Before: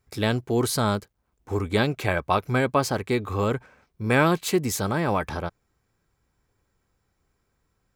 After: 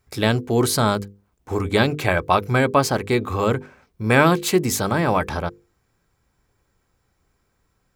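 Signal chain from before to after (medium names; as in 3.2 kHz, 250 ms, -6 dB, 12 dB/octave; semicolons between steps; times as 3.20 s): hum notches 50/100/150/200/250/300/350/400/450/500 Hz; trim +5 dB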